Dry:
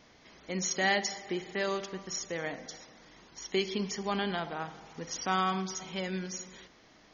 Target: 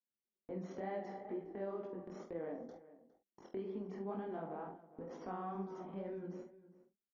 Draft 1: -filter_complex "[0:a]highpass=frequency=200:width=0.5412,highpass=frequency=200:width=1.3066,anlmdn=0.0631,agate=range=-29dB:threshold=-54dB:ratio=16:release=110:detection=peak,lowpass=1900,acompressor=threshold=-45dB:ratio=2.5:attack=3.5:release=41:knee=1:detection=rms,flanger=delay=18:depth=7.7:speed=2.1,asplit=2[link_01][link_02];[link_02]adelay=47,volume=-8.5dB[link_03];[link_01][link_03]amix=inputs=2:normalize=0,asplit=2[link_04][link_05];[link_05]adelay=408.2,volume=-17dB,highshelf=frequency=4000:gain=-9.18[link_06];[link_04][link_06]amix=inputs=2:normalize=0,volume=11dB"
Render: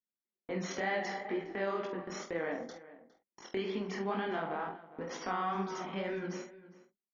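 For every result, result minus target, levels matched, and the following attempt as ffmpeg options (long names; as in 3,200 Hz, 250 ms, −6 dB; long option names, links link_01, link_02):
2,000 Hz band +11.0 dB; downward compressor: peak gain reduction −5 dB
-filter_complex "[0:a]highpass=frequency=200:width=0.5412,highpass=frequency=200:width=1.3066,anlmdn=0.0631,agate=range=-29dB:threshold=-54dB:ratio=16:release=110:detection=peak,lowpass=650,acompressor=threshold=-45dB:ratio=2.5:attack=3.5:release=41:knee=1:detection=rms,flanger=delay=18:depth=7.7:speed=2.1,asplit=2[link_01][link_02];[link_02]adelay=47,volume=-8.5dB[link_03];[link_01][link_03]amix=inputs=2:normalize=0,asplit=2[link_04][link_05];[link_05]adelay=408.2,volume=-17dB,highshelf=frequency=4000:gain=-9.18[link_06];[link_04][link_06]amix=inputs=2:normalize=0,volume=11dB"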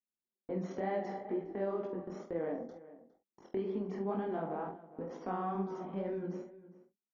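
downward compressor: peak gain reduction −6.5 dB
-filter_complex "[0:a]highpass=frequency=200:width=0.5412,highpass=frequency=200:width=1.3066,anlmdn=0.0631,agate=range=-29dB:threshold=-54dB:ratio=16:release=110:detection=peak,lowpass=650,acompressor=threshold=-56dB:ratio=2.5:attack=3.5:release=41:knee=1:detection=rms,flanger=delay=18:depth=7.7:speed=2.1,asplit=2[link_01][link_02];[link_02]adelay=47,volume=-8.5dB[link_03];[link_01][link_03]amix=inputs=2:normalize=0,asplit=2[link_04][link_05];[link_05]adelay=408.2,volume=-17dB,highshelf=frequency=4000:gain=-9.18[link_06];[link_04][link_06]amix=inputs=2:normalize=0,volume=11dB"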